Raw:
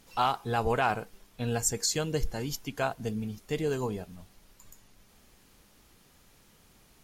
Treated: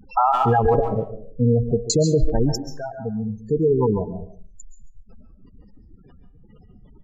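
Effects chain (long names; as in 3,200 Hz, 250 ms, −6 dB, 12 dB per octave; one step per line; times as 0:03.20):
0:02.56–0:04.12: fade in
gate on every frequency bin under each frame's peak −10 dB strong
0:00.74–0:01.90: Butterworth low-pass 590 Hz 72 dB per octave
far-end echo of a speakerphone 140 ms, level −11 dB
convolution reverb RT60 0.40 s, pre-delay 100 ms, DRR 10 dB
boost into a limiter +23.5 dB
level −8 dB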